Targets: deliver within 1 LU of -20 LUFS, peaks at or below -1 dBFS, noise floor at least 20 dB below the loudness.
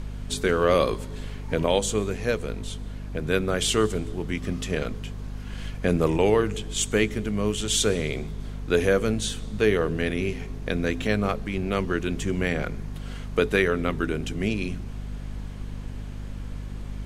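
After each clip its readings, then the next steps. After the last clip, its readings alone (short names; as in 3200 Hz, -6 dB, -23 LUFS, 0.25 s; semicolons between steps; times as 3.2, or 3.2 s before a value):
hum 50 Hz; harmonics up to 250 Hz; hum level -32 dBFS; noise floor -36 dBFS; noise floor target -46 dBFS; loudness -25.5 LUFS; peak -7.0 dBFS; loudness target -20.0 LUFS
-> notches 50/100/150/200/250 Hz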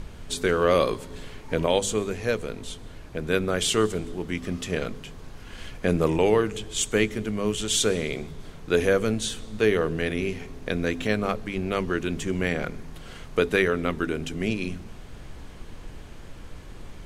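hum none; noise floor -43 dBFS; noise floor target -46 dBFS
-> noise print and reduce 6 dB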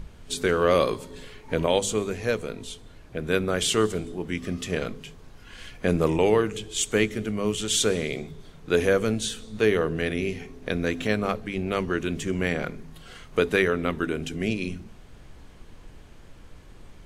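noise floor -48 dBFS; loudness -26.0 LUFS; peak -8.0 dBFS; loudness target -20.0 LUFS
-> gain +6 dB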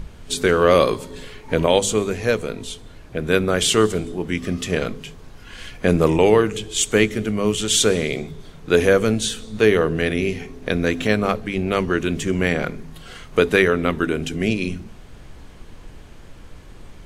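loudness -20.0 LUFS; peak -2.0 dBFS; noise floor -42 dBFS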